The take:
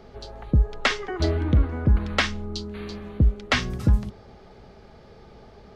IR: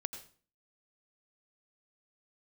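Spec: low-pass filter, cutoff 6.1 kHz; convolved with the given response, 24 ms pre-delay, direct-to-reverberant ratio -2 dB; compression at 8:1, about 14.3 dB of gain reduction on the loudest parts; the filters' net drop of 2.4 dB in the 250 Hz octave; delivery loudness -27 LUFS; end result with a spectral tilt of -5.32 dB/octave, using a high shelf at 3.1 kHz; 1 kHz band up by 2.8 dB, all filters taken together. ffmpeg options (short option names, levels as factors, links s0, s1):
-filter_complex "[0:a]lowpass=6100,equalizer=f=250:t=o:g=-3.5,equalizer=f=1000:t=o:g=4.5,highshelf=f=3100:g=-3.5,acompressor=threshold=0.0355:ratio=8,asplit=2[s0][s1];[1:a]atrim=start_sample=2205,adelay=24[s2];[s1][s2]afir=irnorm=-1:irlink=0,volume=1.33[s3];[s0][s3]amix=inputs=2:normalize=0,volume=1.41"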